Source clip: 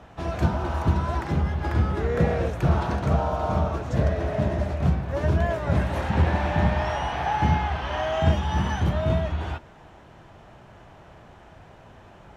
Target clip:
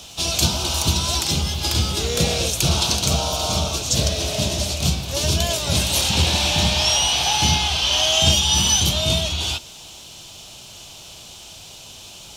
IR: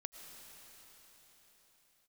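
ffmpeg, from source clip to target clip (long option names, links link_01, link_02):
-af "aexciter=amount=14.1:drive=8.8:freq=2900"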